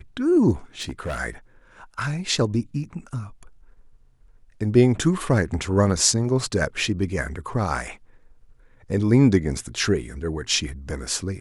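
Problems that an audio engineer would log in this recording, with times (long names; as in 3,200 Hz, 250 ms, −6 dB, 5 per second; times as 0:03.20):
0:00.81–0:01.20: clipping −24.5 dBFS
0:02.84: drop-out 2.1 ms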